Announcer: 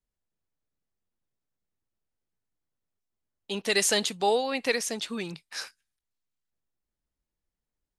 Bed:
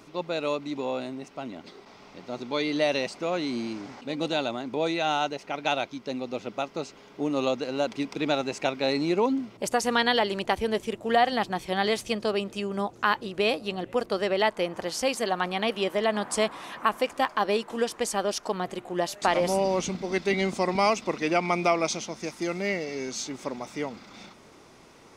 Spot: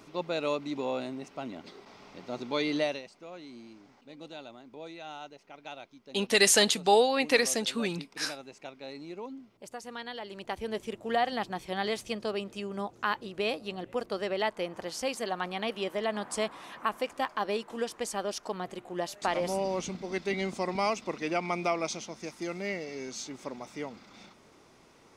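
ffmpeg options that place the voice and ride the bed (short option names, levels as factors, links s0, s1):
-filter_complex "[0:a]adelay=2650,volume=1.33[s0];[1:a]volume=2.82,afade=t=out:st=2.75:d=0.27:silence=0.177828,afade=t=in:st=10.2:d=0.66:silence=0.281838[s1];[s0][s1]amix=inputs=2:normalize=0"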